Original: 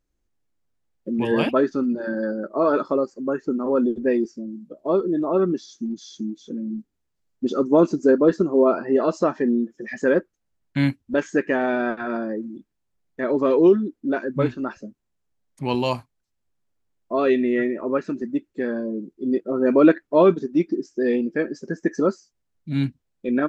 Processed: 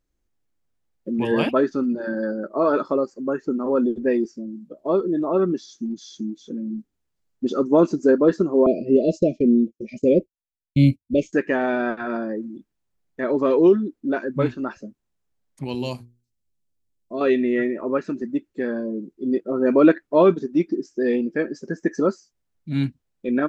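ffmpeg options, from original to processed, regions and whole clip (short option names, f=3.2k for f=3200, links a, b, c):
-filter_complex "[0:a]asettb=1/sr,asplit=3[a][b][c];[a]atrim=end=8.664[d];[b]atrim=start=8.66:end=11.33,asetpts=PTS-STARTPTS,afade=t=in:d=0.004:c=qsin,afade=t=out:st=2.666:d=0.004:c=qsin,agate=range=-33dB:threshold=-33dB:ratio=3:release=100:detection=peak,asuperstop=centerf=1200:order=20:qfactor=0.77,lowshelf=f=180:g=12[e];[c]atrim=start=11.326[f];[d][e]acrossfade=d=0.004:c1=hsin:c2=qsin[g];[g][f]acrossfade=d=0.004:c1=qsin:c2=hsin,asettb=1/sr,asplit=3[h][i][j];[h]atrim=end=15.644[k];[i]atrim=start=15.64:end=17.21,asetpts=PTS-STARTPTS,afade=t=in:d=0.004:c=qsin,afade=t=out:st=1.566:d=0.004:c=qsin,equalizer=f=1.2k:w=0.56:g=-13,bandreject=f=60:t=h:w=6,bandreject=f=120:t=h:w=6,bandreject=f=180:t=h:w=6,bandreject=f=240:t=h:w=6,bandreject=f=300:t=h:w=6,bandreject=f=360:t=h:w=6,bandreject=f=420:t=h:w=6,bandreject=f=480:t=h:w=6[l];[j]atrim=start=17.206[m];[k][l]acrossfade=d=0.004:c1=hsin:c2=qsin[n];[n][m]acrossfade=d=0.004:c1=qsin:c2=hsin"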